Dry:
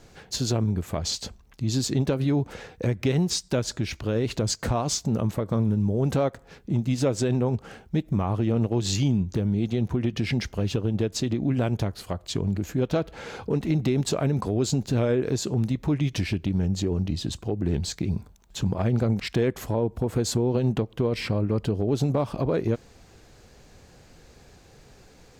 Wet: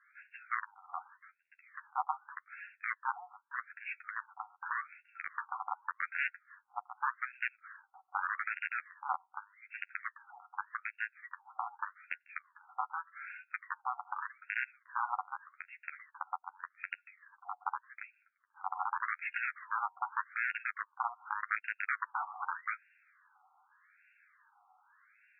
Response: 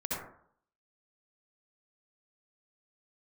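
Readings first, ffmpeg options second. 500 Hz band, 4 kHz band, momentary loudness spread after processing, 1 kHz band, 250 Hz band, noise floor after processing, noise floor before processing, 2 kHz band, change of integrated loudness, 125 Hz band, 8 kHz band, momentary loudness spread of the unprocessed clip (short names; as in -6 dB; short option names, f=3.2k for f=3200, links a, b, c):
under -35 dB, under -25 dB, 13 LU, +0.5 dB, under -40 dB, -78 dBFS, -53 dBFS, +3.0 dB, -13.5 dB, under -40 dB, under -40 dB, 6 LU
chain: -af "aeval=exprs='(mod(5.62*val(0)+1,2)-1)/5.62':c=same,flanger=delay=9.3:depth=2.6:regen=14:speed=0.28:shape=sinusoidal,afftfilt=real='re*between(b*sr/1024,980*pow(2000/980,0.5+0.5*sin(2*PI*0.84*pts/sr))/1.41,980*pow(2000/980,0.5+0.5*sin(2*PI*0.84*pts/sr))*1.41)':imag='im*between(b*sr/1024,980*pow(2000/980,0.5+0.5*sin(2*PI*0.84*pts/sr))/1.41,980*pow(2000/980,0.5+0.5*sin(2*PI*0.84*pts/sr))*1.41)':win_size=1024:overlap=0.75,volume=1dB"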